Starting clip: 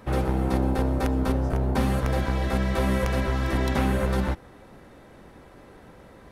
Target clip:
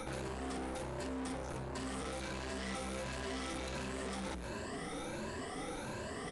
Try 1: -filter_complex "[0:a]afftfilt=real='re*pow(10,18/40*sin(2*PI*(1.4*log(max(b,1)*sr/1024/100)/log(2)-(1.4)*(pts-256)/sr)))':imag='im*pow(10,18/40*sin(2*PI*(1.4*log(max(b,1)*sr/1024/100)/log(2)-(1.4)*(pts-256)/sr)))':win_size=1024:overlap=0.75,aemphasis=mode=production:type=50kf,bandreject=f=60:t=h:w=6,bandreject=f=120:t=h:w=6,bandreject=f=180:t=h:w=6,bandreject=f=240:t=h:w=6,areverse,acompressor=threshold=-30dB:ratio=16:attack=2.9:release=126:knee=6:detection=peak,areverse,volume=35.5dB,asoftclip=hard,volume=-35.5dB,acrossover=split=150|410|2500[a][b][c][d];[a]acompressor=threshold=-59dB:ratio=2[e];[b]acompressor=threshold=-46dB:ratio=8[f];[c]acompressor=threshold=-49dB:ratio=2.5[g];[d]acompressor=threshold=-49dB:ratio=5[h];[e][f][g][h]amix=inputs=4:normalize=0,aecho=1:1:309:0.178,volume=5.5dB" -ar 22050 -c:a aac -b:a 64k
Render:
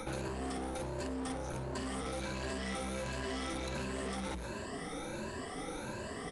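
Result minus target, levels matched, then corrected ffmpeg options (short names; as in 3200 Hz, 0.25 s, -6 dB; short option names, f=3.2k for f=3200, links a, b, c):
overloaded stage: distortion -4 dB
-filter_complex "[0:a]afftfilt=real='re*pow(10,18/40*sin(2*PI*(1.4*log(max(b,1)*sr/1024/100)/log(2)-(1.4)*(pts-256)/sr)))':imag='im*pow(10,18/40*sin(2*PI*(1.4*log(max(b,1)*sr/1024/100)/log(2)-(1.4)*(pts-256)/sr)))':win_size=1024:overlap=0.75,aemphasis=mode=production:type=50kf,bandreject=f=60:t=h:w=6,bandreject=f=120:t=h:w=6,bandreject=f=180:t=h:w=6,bandreject=f=240:t=h:w=6,areverse,acompressor=threshold=-30dB:ratio=16:attack=2.9:release=126:knee=6:detection=peak,areverse,volume=42dB,asoftclip=hard,volume=-42dB,acrossover=split=150|410|2500[a][b][c][d];[a]acompressor=threshold=-59dB:ratio=2[e];[b]acompressor=threshold=-46dB:ratio=8[f];[c]acompressor=threshold=-49dB:ratio=2.5[g];[d]acompressor=threshold=-49dB:ratio=5[h];[e][f][g][h]amix=inputs=4:normalize=0,aecho=1:1:309:0.178,volume=5.5dB" -ar 22050 -c:a aac -b:a 64k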